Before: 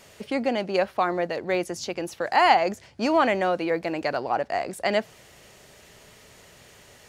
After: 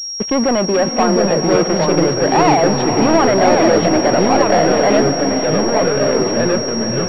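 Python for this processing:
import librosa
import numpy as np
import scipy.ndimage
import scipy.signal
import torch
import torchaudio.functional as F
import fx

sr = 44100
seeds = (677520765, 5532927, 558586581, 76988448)

p1 = fx.peak_eq(x, sr, hz=2000.0, db=-3.0, octaves=1.3)
p2 = fx.leveller(p1, sr, passes=5)
p3 = fx.level_steps(p2, sr, step_db=18)
p4 = p2 + (p3 * 10.0 ** (-1.0 / 20.0))
p5 = fx.air_absorb(p4, sr, metres=450.0, at=(1.03, 1.54))
p6 = fx.echo_pitch(p5, sr, ms=621, semitones=-3, count=3, db_per_echo=-3.0)
p7 = p6 + fx.echo_diffused(p6, sr, ms=512, feedback_pct=46, wet_db=-8.0, dry=0)
p8 = fx.pwm(p7, sr, carrier_hz=5600.0)
y = p8 * 10.0 ** (-6.5 / 20.0)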